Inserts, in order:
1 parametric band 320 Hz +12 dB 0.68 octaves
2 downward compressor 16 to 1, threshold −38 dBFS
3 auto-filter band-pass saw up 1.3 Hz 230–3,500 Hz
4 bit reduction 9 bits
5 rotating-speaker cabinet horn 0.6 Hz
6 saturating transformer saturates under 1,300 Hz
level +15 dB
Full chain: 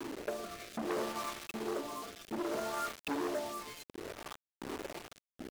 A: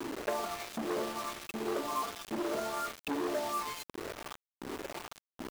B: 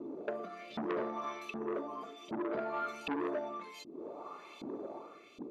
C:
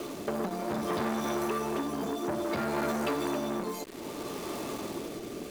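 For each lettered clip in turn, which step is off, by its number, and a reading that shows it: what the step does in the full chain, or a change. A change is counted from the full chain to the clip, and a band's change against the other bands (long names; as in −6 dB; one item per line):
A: 5, 1 kHz band +2.0 dB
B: 4, 8 kHz band −13.5 dB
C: 3, 125 Hz band +7.5 dB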